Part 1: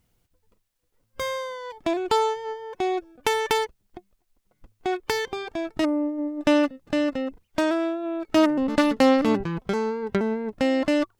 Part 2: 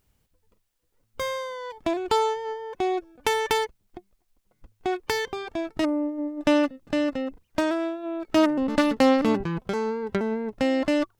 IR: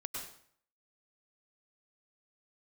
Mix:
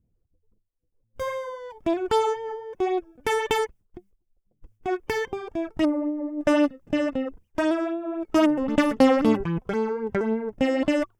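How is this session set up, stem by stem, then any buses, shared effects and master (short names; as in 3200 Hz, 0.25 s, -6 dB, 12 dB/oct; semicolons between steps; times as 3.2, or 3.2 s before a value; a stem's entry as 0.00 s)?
-1.5 dB, 0.00 s, no send, low-pass opened by the level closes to 480 Hz, open at -18 dBFS; phaser stages 6, 3.8 Hz, lowest notch 180–2300 Hz
-6.0 dB, 0.00 s, no send, gate with hold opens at -50 dBFS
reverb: off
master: bell 4100 Hz -10 dB 0.29 oct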